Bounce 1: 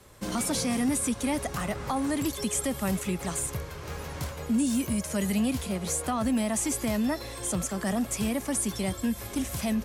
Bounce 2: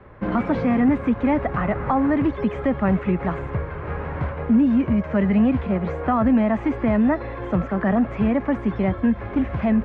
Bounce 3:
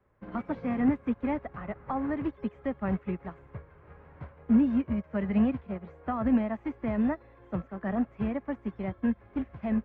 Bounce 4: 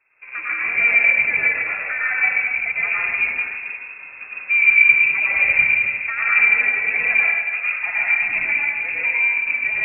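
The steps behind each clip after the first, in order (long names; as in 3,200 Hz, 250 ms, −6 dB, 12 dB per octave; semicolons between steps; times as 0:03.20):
low-pass filter 2,000 Hz 24 dB per octave; level +9 dB
expander for the loud parts 2.5 to 1, over −27 dBFS; level −4 dB
dense smooth reverb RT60 1.6 s, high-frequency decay 0.95×, pre-delay 85 ms, DRR −7.5 dB; voice inversion scrambler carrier 2,600 Hz; level +3.5 dB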